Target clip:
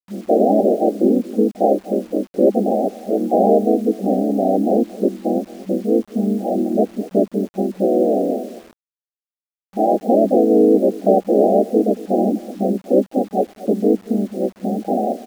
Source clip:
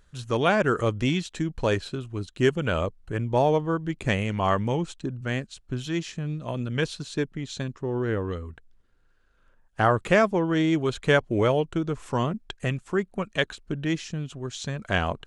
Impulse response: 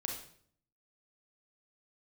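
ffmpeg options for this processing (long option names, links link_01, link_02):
-filter_complex "[0:a]aeval=exprs='0.447*(cos(1*acos(clip(val(0)/0.447,-1,1)))-cos(1*PI/2))+0.178*(cos(5*acos(clip(val(0)/0.447,-1,1)))-cos(5*PI/2))':channel_layout=same,adynamicequalizer=threshold=0.0355:dfrequency=550:dqfactor=3:tfrequency=550:tqfactor=3:attack=5:release=100:ratio=0.375:range=2.5:mode=cutabove:tftype=bell,aecho=1:1:232:0.106,asplit=4[link_01][link_02][link_03][link_04];[link_02]asetrate=37084,aresample=44100,atempo=1.18921,volume=-5dB[link_05];[link_03]asetrate=58866,aresample=44100,atempo=0.749154,volume=0dB[link_06];[link_04]asetrate=66075,aresample=44100,atempo=0.66742,volume=-3dB[link_07];[link_01][link_05][link_06][link_07]amix=inputs=4:normalize=0,afftfilt=real='re*between(b*sr/4096,190,810)':imag='im*between(b*sr/4096,190,810)':win_size=4096:overlap=0.75,asplit=2[link_08][link_09];[link_09]acompressor=threshold=-24dB:ratio=6,volume=1.5dB[link_10];[link_08][link_10]amix=inputs=2:normalize=0,acrusher=bits=6:mix=0:aa=0.000001,volume=-3dB"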